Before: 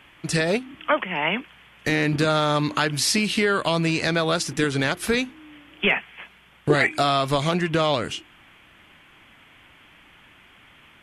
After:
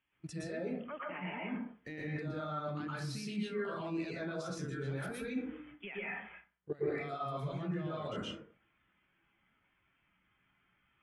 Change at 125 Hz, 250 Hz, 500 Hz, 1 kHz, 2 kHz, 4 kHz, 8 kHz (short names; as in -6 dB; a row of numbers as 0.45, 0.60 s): -14.0, -14.0, -16.0, -18.0, -20.0, -24.0, -24.0 dB